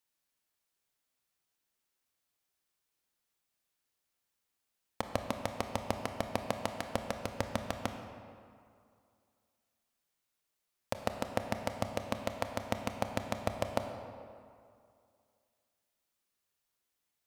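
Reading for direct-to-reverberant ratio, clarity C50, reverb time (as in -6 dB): 5.5 dB, 6.5 dB, 2.3 s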